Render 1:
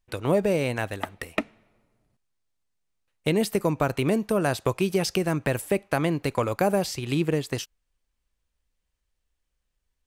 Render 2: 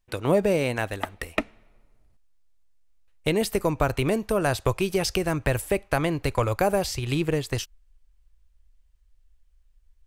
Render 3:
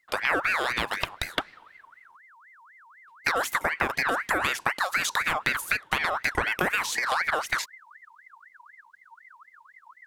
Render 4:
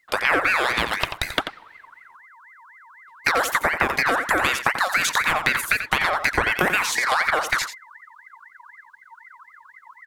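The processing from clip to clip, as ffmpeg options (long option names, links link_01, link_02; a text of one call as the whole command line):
ffmpeg -i in.wav -af "asubboost=boost=10:cutoff=61,volume=1.5dB" out.wav
ffmpeg -i in.wav -af "acompressor=threshold=-27dB:ratio=4,aeval=exprs='val(0)*sin(2*PI*1500*n/s+1500*0.4/4*sin(2*PI*4*n/s))':channel_layout=same,volume=6.5dB" out.wav
ffmpeg -i in.wav -af "aecho=1:1:88:0.335,volume=5dB" out.wav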